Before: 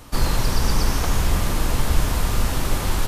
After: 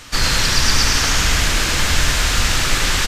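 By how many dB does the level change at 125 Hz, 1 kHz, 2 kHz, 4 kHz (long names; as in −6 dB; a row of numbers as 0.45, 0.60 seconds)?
+0.5, +5.0, +13.0, +13.5 decibels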